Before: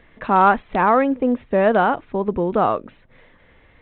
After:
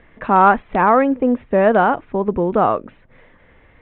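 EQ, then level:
low-pass filter 2,700 Hz 12 dB per octave
+2.5 dB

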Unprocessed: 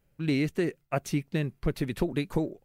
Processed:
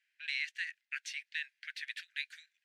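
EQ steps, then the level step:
Butterworth high-pass 1,600 Hz 96 dB per octave
dynamic equaliser 2,100 Hz, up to −4 dB, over −50 dBFS, Q 1.4
head-to-tape spacing loss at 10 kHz 25 dB
+11.0 dB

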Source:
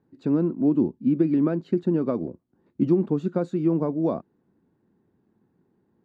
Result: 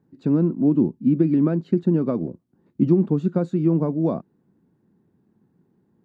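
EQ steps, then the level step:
parametric band 160 Hz +6.5 dB 1.3 octaves
0.0 dB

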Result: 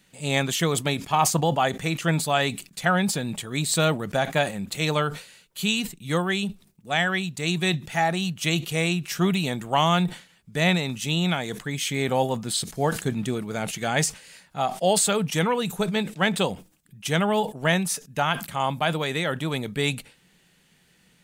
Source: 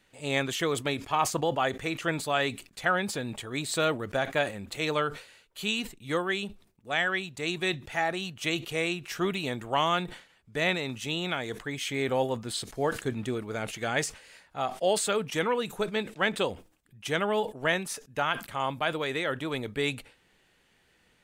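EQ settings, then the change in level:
parametric band 170 Hz +14 dB 0.79 octaves
dynamic equaliser 780 Hz, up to +6 dB, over −41 dBFS, Q 1.9
high-shelf EQ 3,400 Hz +10.5 dB
0.0 dB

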